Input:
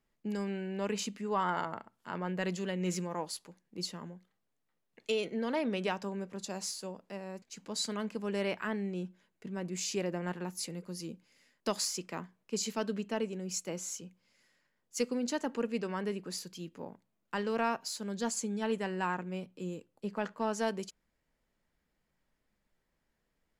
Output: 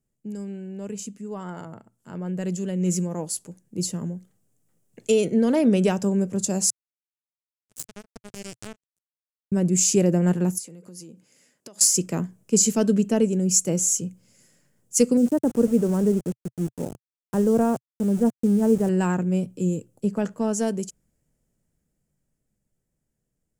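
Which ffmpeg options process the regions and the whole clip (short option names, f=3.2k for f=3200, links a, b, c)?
-filter_complex "[0:a]asettb=1/sr,asplit=3[a][b][c];[a]atrim=end=6.704[d];[b]atrim=start=6.7:end=9.52,asetpts=PTS-STARTPTS,afade=t=in:d=0.004:c=qsin,afade=t=out:st=2.816:d=0.004:c=qsin,acrusher=bits=3:mix=0:aa=0.5,acompressor=threshold=-46dB:ratio=2.5:attack=3.2:release=140:knee=1:detection=peak[e];[c]atrim=start=9.516[f];[d][e]acrossfade=d=0.004:c1=hsin:c2=qsin[g];[g][f]acrossfade=d=0.004:c1=qsin:c2=hsin,asettb=1/sr,asplit=3[h][i][j];[h]atrim=end=10.584[k];[i]atrim=start=10.58:end=11.81,asetpts=PTS-STARTPTS,afade=t=in:d=0.004:c=qsin,afade=t=out:st=1.226:d=0.004:c=qsin,highshelf=f=5.1k:g=-8,acompressor=threshold=-48dB:ratio=16:attack=3.2:release=140:knee=1:detection=peak,highpass=f=520:p=1[l];[j]atrim=start=11.806[m];[k][l]acrossfade=d=0.004:c1=hsin:c2=qsin[n];[n][m]acrossfade=d=0.004:c1=qsin:c2=hsin,asettb=1/sr,asplit=3[o][p][q];[o]atrim=end=15.174[r];[p]atrim=start=15.17:end=18.89,asetpts=PTS-STARTPTS,afade=t=in:d=0.004:c=qsin,afade=t=out:st=3.716:d=0.004:c=qsin,lowpass=1k,aeval=exprs='val(0)*gte(abs(val(0)),0.00501)':c=same[s];[q]atrim=start=18.886[t];[r][s]acrossfade=d=0.004:c1=hsin:c2=qsin[u];[u][t]acrossfade=d=0.004:c1=qsin:c2=hsin,dynaudnorm=f=220:g=31:m=15dB,equalizer=f=125:t=o:w=1:g=9,equalizer=f=1k:t=o:w=1:g=-10,equalizer=f=2k:t=o:w=1:g=-8,equalizer=f=4k:t=o:w=1:g=-11,equalizer=f=8k:t=o:w=1:g=9"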